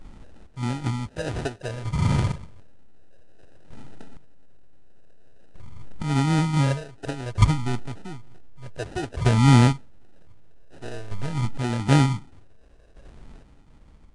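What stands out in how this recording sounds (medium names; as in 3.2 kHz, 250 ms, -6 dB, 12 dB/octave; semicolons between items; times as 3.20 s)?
chopped level 0.54 Hz, depth 65%, duty 25%; phasing stages 4, 0.53 Hz, lowest notch 190–1000 Hz; aliases and images of a low sample rate 1.1 kHz, jitter 0%; Nellymoser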